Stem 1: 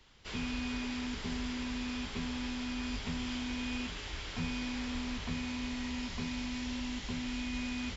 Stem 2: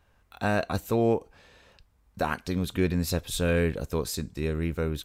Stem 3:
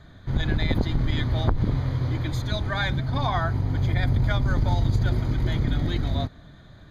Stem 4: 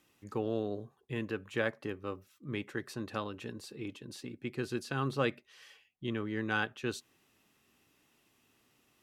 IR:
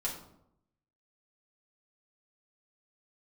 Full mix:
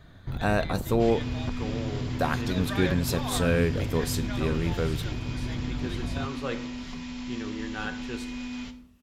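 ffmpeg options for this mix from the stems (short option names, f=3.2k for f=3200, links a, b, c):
-filter_complex "[0:a]alimiter=level_in=7.5dB:limit=-24dB:level=0:latency=1:release=176,volume=-7.5dB,adelay=750,volume=-2.5dB,asplit=2[a][b];[b]volume=-4dB[c];[1:a]volume=-0.5dB,asplit=2[d][e];[e]volume=-15.5dB[f];[2:a]acompressor=threshold=-26dB:ratio=6,volume=-3dB[g];[3:a]adelay=1250,volume=-5.5dB,asplit=2[h][i];[i]volume=-4.5dB[j];[4:a]atrim=start_sample=2205[k];[c][f][j]amix=inputs=3:normalize=0[l];[l][k]afir=irnorm=-1:irlink=0[m];[a][d][g][h][m]amix=inputs=5:normalize=0"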